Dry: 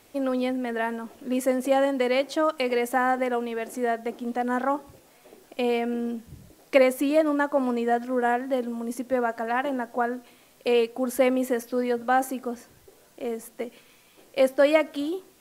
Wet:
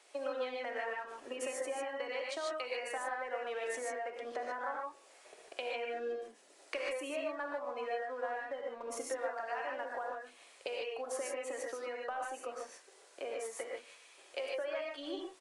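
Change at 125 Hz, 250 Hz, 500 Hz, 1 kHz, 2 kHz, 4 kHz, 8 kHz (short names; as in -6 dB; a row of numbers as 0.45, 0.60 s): n/a, -24.0 dB, -14.0 dB, -13.0 dB, -10.5 dB, -9.0 dB, -5.5 dB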